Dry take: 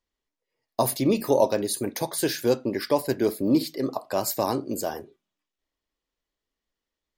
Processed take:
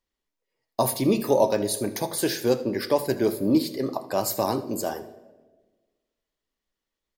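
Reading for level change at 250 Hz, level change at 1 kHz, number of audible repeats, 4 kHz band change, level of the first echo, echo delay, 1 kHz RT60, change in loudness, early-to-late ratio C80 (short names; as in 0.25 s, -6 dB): +0.5 dB, +0.5 dB, 1, +0.5 dB, -17.5 dB, 79 ms, 1.1 s, +0.5 dB, 16.5 dB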